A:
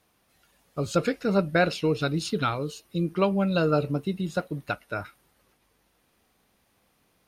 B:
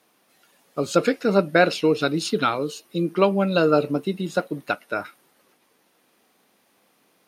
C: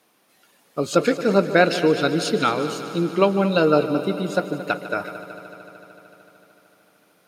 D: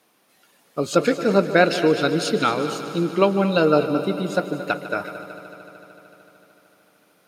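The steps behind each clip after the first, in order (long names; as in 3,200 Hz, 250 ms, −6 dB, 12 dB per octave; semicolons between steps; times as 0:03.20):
Chebyshev high-pass filter 260 Hz, order 2; level +6 dB
echo machine with several playback heads 75 ms, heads second and third, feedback 73%, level −14.5 dB; level +1 dB
convolution reverb RT60 0.30 s, pre-delay 233 ms, DRR 17 dB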